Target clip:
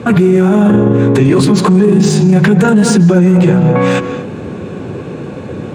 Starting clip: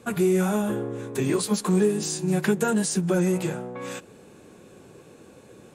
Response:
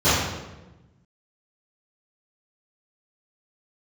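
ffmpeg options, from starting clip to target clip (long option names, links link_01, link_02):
-filter_complex "[0:a]highpass=87,bass=frequency=250:gain=7,treble=frequency=4000:gain=-7,adynamicsmooth=sensitivity=5.5:basefreq=5900,asplit=2[link_01][link_02];[1:a]atrim=start_sample=2205,atrim=end_sample=6174,adelay=136[link_03];[link_02][link_03]afir=irnorm=-1:irlink=0,volume=-32dB[link_04];[link_01][link_04]amix=inputs=2:normalize=0,alimiter=level_in=23.5dB:limit=-1dB:release=50:level=0:latency=1,volume=-1dB"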